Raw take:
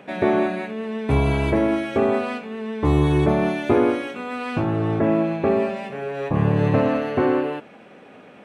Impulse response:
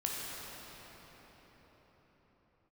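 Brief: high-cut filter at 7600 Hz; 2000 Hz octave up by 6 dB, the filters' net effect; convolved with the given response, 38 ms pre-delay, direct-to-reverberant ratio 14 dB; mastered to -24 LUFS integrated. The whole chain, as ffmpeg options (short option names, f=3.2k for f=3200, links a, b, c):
-filter_complex "[0:a]lowpass=7.6k,equalizer=f=2k:t=o:g=7.5,asplit=2[a][b];[1:a]atrim=start_sample=2205,adelay=38[c];[b][c]afir=irnorm=-1:irlink=0,volume=-19dB[d];[a][d]amix=inputs=2:normalize=0,volume=-3dB"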